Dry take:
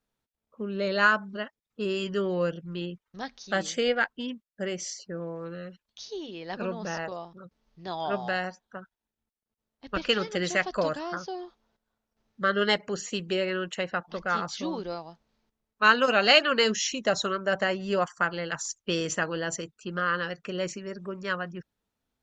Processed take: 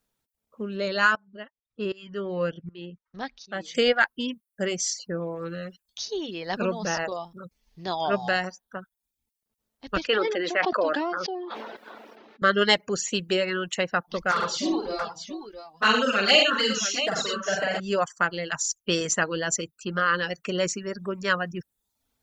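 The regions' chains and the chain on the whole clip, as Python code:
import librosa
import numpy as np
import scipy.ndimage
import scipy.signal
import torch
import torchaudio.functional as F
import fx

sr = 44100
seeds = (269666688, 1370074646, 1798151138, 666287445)

y = fx.chain(x, sr, fx.lowpass(hz=3400.0, slope=12),
    fx.tremolo_shape(shape='saw_up', hz=1.3, depth_pct=80), at=(1.15, 3.75))
y = fx.chain(y, sr, fx.cheby1_highpass(hz=310.0, order=3),
    fx.air_absorb(metres=360.0),
    fx.sustainer(db_per_s=21.0), at=(10.07, 12.42))
y = fx.chain(y, sr, fx.env_flanger(rest_ms=5.6, full_db=-15.5),
    fx.echo_multitap(ms=(46, 89, 114, 679, 698), db=(-3.0, -6.0, -6.0, -7.5, -19.5)), at=(14.31, 17.8))
y = fx.dereverb_blind(y, sr, rt60_s=0.57)
y = fx.high_shelf(y, sr, hz=6100.0, db=9.0)
y = fx.rider(y, sr, range_db=4, speed_s=2.0)
y = F.gain(torch.from_numpy(y), 2.0).numpy()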